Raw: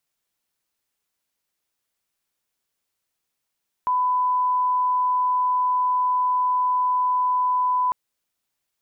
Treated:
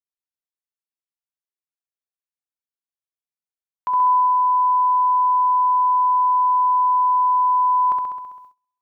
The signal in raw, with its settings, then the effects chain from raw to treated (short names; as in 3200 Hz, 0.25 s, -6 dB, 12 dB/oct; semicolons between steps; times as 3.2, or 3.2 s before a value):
line-up tone -18 dBFS 4.05 s
notches 50/100/150 Hz; on a send: flutter echo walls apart 11.3 m, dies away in 1.2 s; on the sum: gate -46 dBFS, range -25 dB